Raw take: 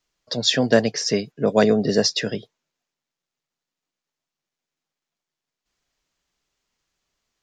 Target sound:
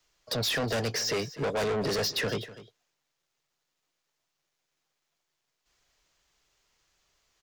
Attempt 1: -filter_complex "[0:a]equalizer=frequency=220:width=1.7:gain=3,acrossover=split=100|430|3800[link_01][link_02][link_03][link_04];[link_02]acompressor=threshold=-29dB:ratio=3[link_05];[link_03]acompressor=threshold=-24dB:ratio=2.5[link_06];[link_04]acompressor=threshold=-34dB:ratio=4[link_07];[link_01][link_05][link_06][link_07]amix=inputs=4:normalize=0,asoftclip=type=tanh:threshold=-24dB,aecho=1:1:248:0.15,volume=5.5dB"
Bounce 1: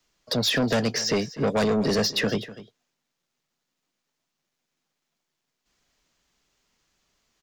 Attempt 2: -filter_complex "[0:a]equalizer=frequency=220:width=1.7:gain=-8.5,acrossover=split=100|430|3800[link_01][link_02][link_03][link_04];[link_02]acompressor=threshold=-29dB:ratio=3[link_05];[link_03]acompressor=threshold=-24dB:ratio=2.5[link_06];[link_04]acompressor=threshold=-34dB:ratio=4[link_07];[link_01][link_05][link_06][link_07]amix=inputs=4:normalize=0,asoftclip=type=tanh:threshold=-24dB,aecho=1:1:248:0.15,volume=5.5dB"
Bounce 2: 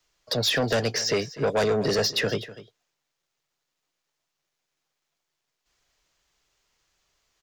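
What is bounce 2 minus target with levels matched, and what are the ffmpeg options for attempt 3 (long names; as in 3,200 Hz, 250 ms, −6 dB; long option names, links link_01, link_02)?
soft clipping: distortion −5 dB
-filter_complex "[0:a]equalizer=frequency=220:width=1.7:gain=-8.5,acrossover=split=100|430|3800[link_01][link_02][link_03][link_04];[link_02]acompressor=threshold=-29dB:ratio=3[link_05];[link_03]acompressor=threshold=-24dB:ratio=2.5[link_06];[link_04]acompressor=threshold=-34dB:ratio=4[link_07];[link_01][link_05][link_06][link_07]amix=inputs=4:normalize=0,asoftclip=type=tanh:threshold=-32dB,aecho=1:1:248:0.15,volume=5.5dB"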